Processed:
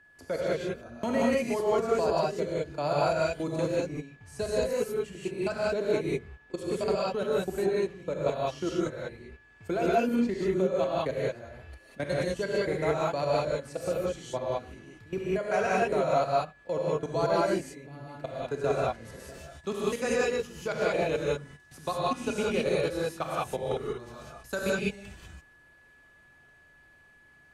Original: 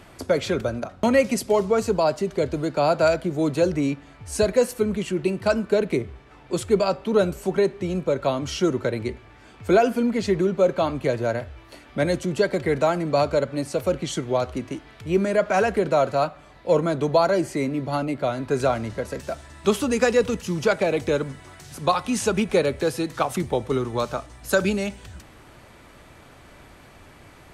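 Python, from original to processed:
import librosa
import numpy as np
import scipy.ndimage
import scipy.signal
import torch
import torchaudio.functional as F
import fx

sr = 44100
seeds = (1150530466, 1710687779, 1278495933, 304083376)

y = fx.level_steps(x, sr, step_db=21)
y = fx.rev_gated(y, sr, seeds[0], gate_ms=220, shape='rising', drr_db=-6.0)
y = y + 10.0 ** (-48.0 / 20.0) * np.sin(2.0 * np.pi * 1700.0 * np.arange(len(y)) / sr)
y = y * librosa.db_to_amplitude(-8.5)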